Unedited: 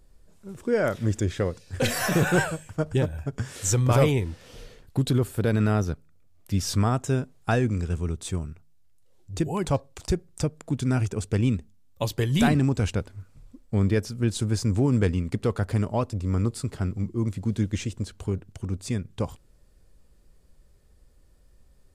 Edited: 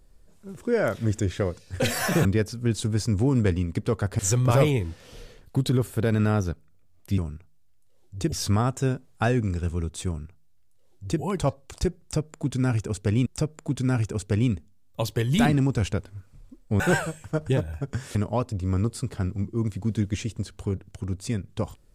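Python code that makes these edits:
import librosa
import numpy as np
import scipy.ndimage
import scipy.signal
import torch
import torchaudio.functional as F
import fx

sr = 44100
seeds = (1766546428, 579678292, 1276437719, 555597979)

y = fx.edit(x, sr, fx.swap(start_s=2.25, length_s=1.35, other_s=13.82, other_length_s=1.94),
    fx.duplicate(start_s=8.34, length_s=1.14, to_s=6.59),
    fx.repeat(start_s=10.28, length_s=1.25, count=2), tone=tone)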